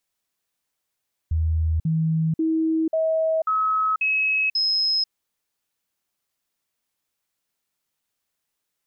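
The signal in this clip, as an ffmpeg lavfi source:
-f lavfi -i "aevalsrc='0.119*clip(min(mod(t,0.54),0.49-mod(t,0.54))/0.005,0,1)*sin(2*PI*80.2*pow(2,floor(t/0.54)/1)*mod(t,0.54))':d=3.78:s=44100"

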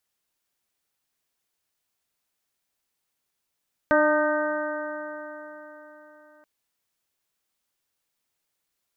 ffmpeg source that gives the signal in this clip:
-f lavfi -i "aevalsrc='0.0668*pow(10,-3*t/4.05)*sin(2*PI*300.33*t)+0.126*pow(10,-3*t/4.05)*sin(2*PI*602.63*t)+0.0501*pow(10,-3*t/4.05)*sin(2*PI*908.87*t)+0.0531*pow(10,-3*t/4.05)*sin(2*PI*1220.94*t)+0.075*pow(10,-3*t/4.05)*sin(2*PI*1540.7*t)+0.0266*pow(10,-3*t/4.05)*sin(2*PI*1869.92*t)':d=2.53:s=44100"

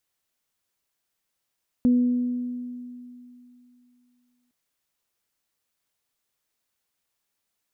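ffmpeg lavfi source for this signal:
-f lavfi -i "aevalsrc='0.188*pow(10,-3*t/2.84)*sin(2*PI*246*t)+0.0211*pow(10,-3*t/1.52)*sin(2*PI*492*t)':d=2.66:s=44100"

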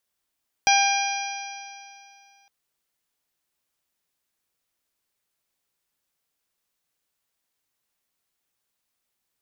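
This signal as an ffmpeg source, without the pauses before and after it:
-f lavfi -i "aevalsrc='0.141*pow(10,-3*t/2.49)*sin(2*PI*794.67*t)+0.0501*pow(10,-3*t/2.49)*sin(2*PI*1593.39*t)+0.1*pow(10,-3*t/2.49)*sin(2*PI*2400.15*t)+0.0473*pow(10,-3*t/2.49)*sin(2*PI*3218.9*t)+0.02*pow(10,-3*t/2.49)*sin(2*PI*4053.48*t)+0.0531*pow(10,-3*t/2.49)*sin(2*PI*4907.61*t)+0.0794*pow(10,-3*t/2.49)*sin(2*PI*5784.86*t)':d=1.81:s=44100"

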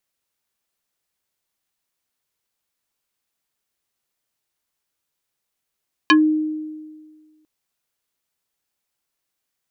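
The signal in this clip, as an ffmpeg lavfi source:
-f lavfi -i "aevalsrc='0.398*pow(10,-3*t/1.65)*sin(2*PI*309*t+2.9*pow(10,-3*t/0.13)*sin(2*PI*4.45*309*t))':d=1.35:s=44100"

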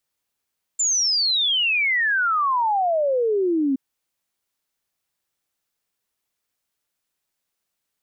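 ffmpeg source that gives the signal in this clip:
-f lavfi -i "aevalsrc='0.133*clip(min(t,2.97-t)/0.01,0,1)*sin(2*PI*7300*2.97/log(260/7300)*(exp(log(260/7300)*t/2.97)-1))':d=2.97:s=44100"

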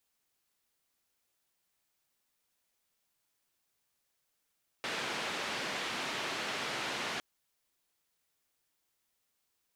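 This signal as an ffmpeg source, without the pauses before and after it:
-f lavfi -i "anoisesrc=c=white:d=2.36:r=44100:seed=1,highpass=f=170,lowpass=f=3100,volume=-23.8dB"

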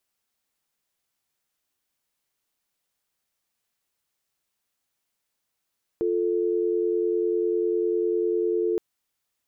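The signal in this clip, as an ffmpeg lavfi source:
-f lavfi -i "aevalsrc='0.0631*(sin(2*PI*350*t)+sin(2*PI*440*t))':d=2.77:s=44100"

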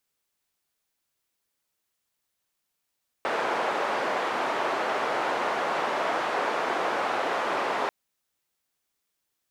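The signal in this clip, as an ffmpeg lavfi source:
-f lavfi -i "anoisesrc=c=white:d=4.64:r=44100:seed=1,highpass=f=480,lowpass=f=1000,volume=-7.1dB"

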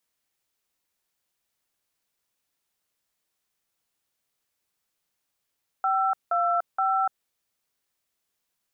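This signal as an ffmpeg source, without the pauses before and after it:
-f lavfi -i "aevalsrc='0.0668*clip(min(mod(t,0.472),0.293-mod(t,0.472))/0.002,0,1)*(eq(floor(t/0.472),0)*(sin(2*PI*770*mod(t,0.472))+sin(2*PI*1336*mod(t,0.472)))+eq(floor(t/0.472),1)*(sin(2*PI*697*mod(t,0.472))+sin(2*PI*1336*mod(t,0.472)))+eq(floor(t/0.472),2)*(sin(2*PI*770*mod(t,0.472))+sin(2*PI*1336*mod(t,0.472))))':d=1.416:s=44100"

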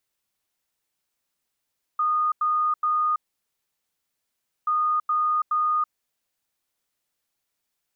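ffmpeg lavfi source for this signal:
-f lavfi -i "aevalsrc='0.106*sin(2*PI*1230*t)*clip(min(mod(mod(t,2.68),0.42),0.33-mod(mod(t,2.68),0.42))/0.005,0,1)*lt(mod(t,2.68),1.26)':d=5.36:s=44100"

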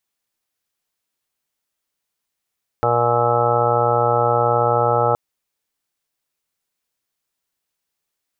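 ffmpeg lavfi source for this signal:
-f lavfi -i "aevalsrc='0.0631*sin(2*PI*119*t)+0.0158*sin(2*PI*238*t)+0.0299*sin(2*PI*357*t)+0.1*sin(2*PI*476*t)+0.0794*sin(2*PI*595*t)+0.0562*sin(2*PI*714*t)+0.1*sin(2*PI*833*t)+0.0158*sin(2*PI*952*t)+0.0282*sin(2*PI*1071*t)+0.0251*sin(2*PI*1190*t)+0.0841*sin(2*PI*1309*t)':d=2.32:s=44100"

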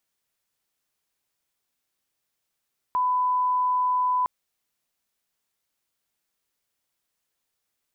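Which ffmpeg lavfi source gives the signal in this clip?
-f lavfi -i "sine=f=1000:d=1.31:r=44100,volume=-1.94dB"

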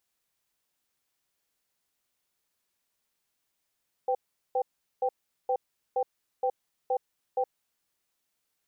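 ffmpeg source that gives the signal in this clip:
-f lavfi -i "aevalsrc='0.0473*(sin(2*PI*506*t)+sin(2*PI*783*t))*clip(min(mod(t,0.47),0.07-mod(t,0.47))/0.005,0,1)':d=3.48:s=44100"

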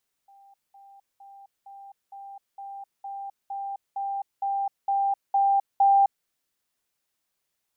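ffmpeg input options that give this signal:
-f lavfi -i "aevalsrc='pow(10,(-51+3*floor(t/0.46))/20)*sin(2*PI*792*t)*clip(min(mod(t,0.46),0.26-mod(t,0.46))/0.005,0,1)':d=5.98:s=44100"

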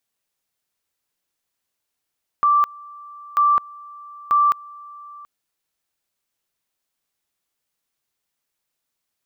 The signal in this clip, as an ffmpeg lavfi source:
-f lavfi -i "aevalsrc='pow(10,(-12.5-24*gte(mod(t,0.94),0.21))/20)*sin(2*PI*1170*t)':d=2.82:s=44100"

